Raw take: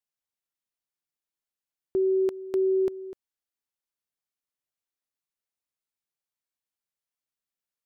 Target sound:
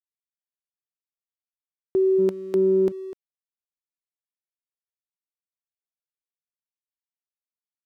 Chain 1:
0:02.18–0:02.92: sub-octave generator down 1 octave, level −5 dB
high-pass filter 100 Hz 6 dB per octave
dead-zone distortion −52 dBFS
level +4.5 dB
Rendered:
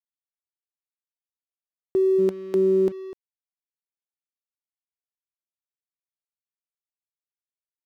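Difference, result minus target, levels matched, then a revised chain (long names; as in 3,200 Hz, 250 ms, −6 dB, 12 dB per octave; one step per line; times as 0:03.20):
dead-zone distortion: distortion +9 dB
0:02.18–0:02.92: sub-octave generator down 1 octave, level −5 dB
high-pass filter 100 Hz 6 dB per octave
dead-zone distortion −61.5 dBFS
level +4.5 dB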